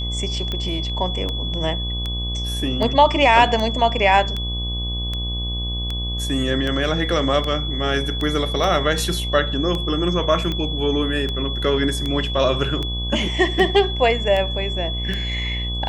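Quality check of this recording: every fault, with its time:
mains buzz 60 Hz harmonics 20 −26 dBFS
scratch tick 78 rpm −13 dBFS
whistle 3,400 Hz −27 dBFS
0:08.64: drop-out 2.7 ms

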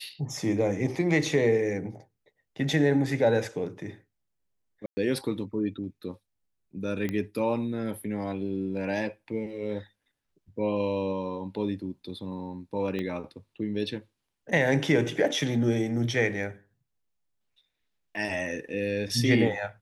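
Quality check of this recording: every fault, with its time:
0:04.86–0:04.97: drop-out 110 ms
0:07.09: click −18 dBFS
0:12.99: click −21 dBFS

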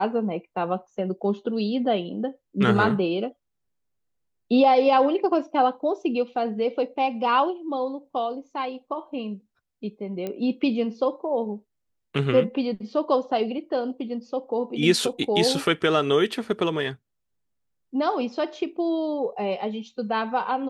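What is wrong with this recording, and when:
0:10.27: click −18 dBFS

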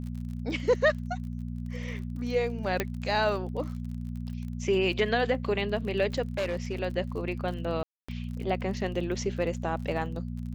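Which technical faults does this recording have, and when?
surface crackle 33 per second −38 dBFS
mains hum 60 Hz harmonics 4 −35 dBFS
0:02.80: click −12 dBFS
0:06.38–0:06.78: clipping −25.5 dBFS
0:07.83–0:08.09: drop-out 255 ms

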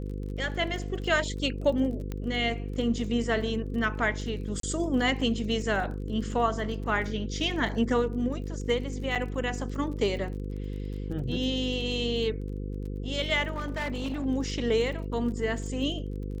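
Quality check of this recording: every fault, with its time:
mains buzz 50 Hz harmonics 10 −34 dBFS
surface crackle 29 per second −38 dBFS
0:02.12: click −21 dBFS
0:04.60–0:04.63: drop-out 33 ms
0:09.15–0:09.16: drop-out 6.5 ms
0:13.52–0:14.26: clipping −27.5 dBFS

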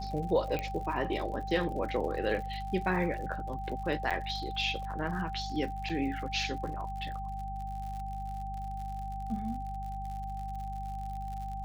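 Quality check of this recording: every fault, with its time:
surface crackle 74 per second −40 dBFS
mains hum 50 Hz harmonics 4 −40 dBFS
whistle 780 Hz −38 dBFS
0:00.59: click −20 dBFS
0:04.10–0:04.11: drop-out 6.7 ms
0:05.89: drop-out 5 ms

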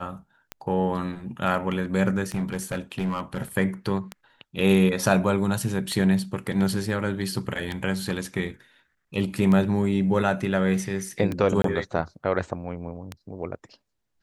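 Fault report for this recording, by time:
scratch tick 33 1/3 rpm −16 dBFS
0:02.34–0:03.42: clipping −22 dBFS
0:11.62–0:11.64: drop-out 23 ms

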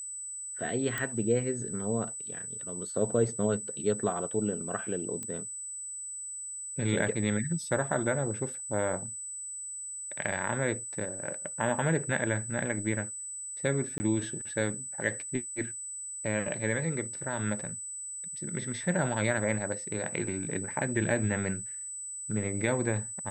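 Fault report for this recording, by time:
whistle 8,000 Hz −37 dBFS
0:00.98: click −17 dBFS
0:05.23: click −23 dBFS
0:13.98–0:14.00: drop-out 20 ms

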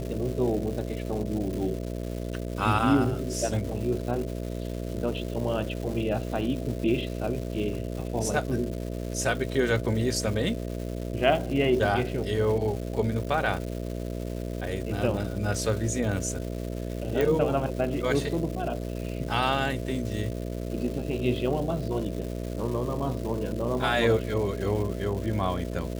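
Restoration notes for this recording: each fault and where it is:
mains buzz 60 Hz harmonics 11 −33 dBFS
surface crackle 470 per second −35 dBFS
0:17.21: click

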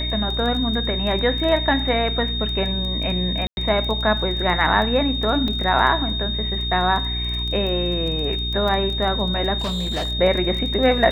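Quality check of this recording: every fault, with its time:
surface crackle 16 per second −26 dBFS
mains hum 60 Hz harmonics 7 −27 dBFS
whistle 3,700 Hz −25 dBFS
0:03.47–0:03.57: drop-out 101 ms
0:05.48: drop-out 2.3 ms
0:09.58–0:10.12: clipping −20.5 dBFS

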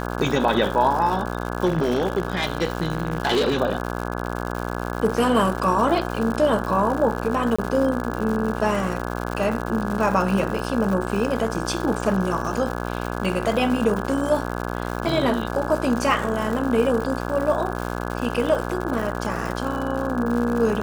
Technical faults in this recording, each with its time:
mains buzz 60 Hz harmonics 28 −28 dBFS
surface crackle 170 per second −27 dBFS
0:01.65–0:03.60: clipping −16 dBFS
0:07.56–0:07.58: drop-out 25 ms

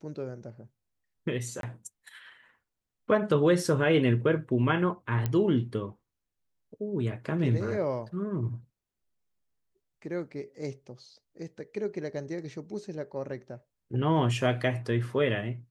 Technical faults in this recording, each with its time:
0:01.61–0:01.63: drop-out 22 ms
0:05.26: click −16 dBFS

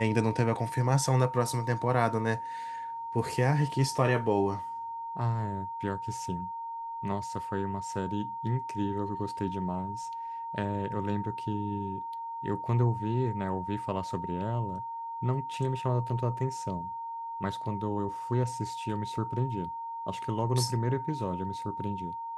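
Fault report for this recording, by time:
whistle 920 Hz −35 dBFS

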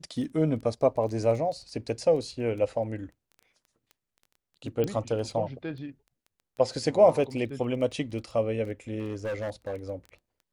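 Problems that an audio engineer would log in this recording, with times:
surface crackle 11 per second −37 dBFS
0:04.84: click −17 dBFS
0:08.99–0:09.76: clipping −28.5 dBFS

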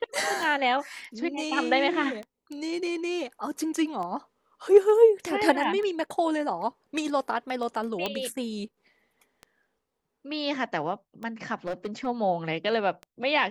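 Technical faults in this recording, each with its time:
scratch tick 33 1/3 rpm
0:08.06: click −14 dBFS
0:11.66–0:12.07: clipping −26.5 dBFS

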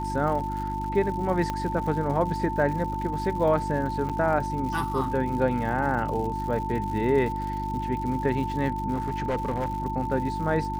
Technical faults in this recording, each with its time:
surface crackle 170 per second −35 dBFS
mains hum 50 Hz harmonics 7 −33 dBFS
whistle 890 Hz −30 dBFS
0:01.50: click −15 dBFS
0:04.09–0:04.10: drop-out 6.8 ms
0:08.93–0:09.82: clipping −22.5 dBFS

